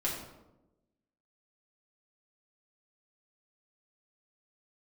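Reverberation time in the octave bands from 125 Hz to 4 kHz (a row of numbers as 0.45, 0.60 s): 1.1, 1.2, 1.1, 0.85, 0.65, 0.55 s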